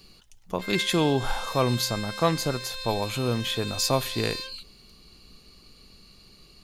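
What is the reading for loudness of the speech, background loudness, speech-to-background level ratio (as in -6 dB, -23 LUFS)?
-27.0 LUFS, -35.0 LUFS, 8.0 dB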